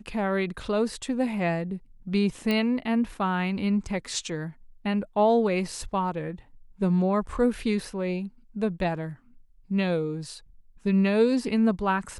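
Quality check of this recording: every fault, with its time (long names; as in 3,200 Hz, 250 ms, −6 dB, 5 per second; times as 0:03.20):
0:02.51: click −14 dBFS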